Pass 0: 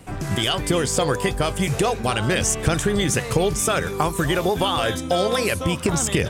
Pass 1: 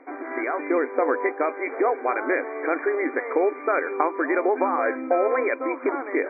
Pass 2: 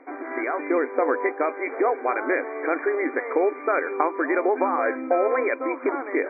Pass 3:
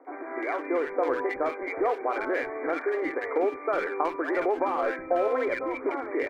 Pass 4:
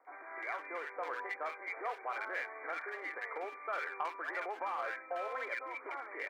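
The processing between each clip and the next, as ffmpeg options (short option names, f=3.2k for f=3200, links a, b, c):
-af "afftfilt=real='re*between(b*sr/4096,250,2400)':imag='im*between(b*sr/4096,250,2400)':win_size=4096:overlap=0.75"
-af anull
-filter_complex "[0:a]asplit=2[a][b];[b]asoftclip=type=hard:threshold=-22dB,volume=-7dB[c];[a][c]amix=inputs=2:normalize=0,acrossover=split=260|1500[d][e][f];[f]adelay=50[g];[d]adelay=370[h];[h][e][g]amix=inputs=3:normalize=0,volume=-5dB"
-filter_complex "[0:a]highpass=1k,acrossover=split=1900[a][b];[a]asoftclip=type=tanh:threshold=-19dB[c];[c][b]amix=inputs=2:normalize=0,volume=-5dB"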